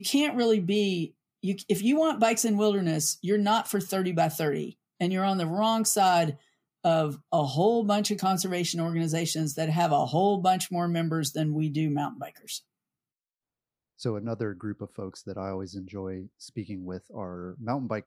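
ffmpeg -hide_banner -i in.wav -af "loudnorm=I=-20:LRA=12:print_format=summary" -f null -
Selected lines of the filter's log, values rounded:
Input Integrated:    -27.7 LUFS
Input True Peak:     -10.6 dBTP
Input LRA:            10.3 LU
Input Threshold:     -38.3 LUFS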